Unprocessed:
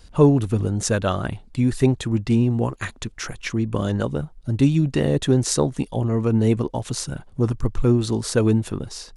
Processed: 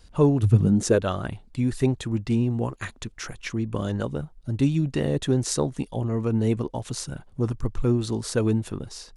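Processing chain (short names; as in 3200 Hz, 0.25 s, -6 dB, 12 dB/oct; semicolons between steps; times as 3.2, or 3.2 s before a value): 0.42–0.98 bell 90 Hz -> 440 Hz +15 dB 0.79 oct; gain -4.5 dB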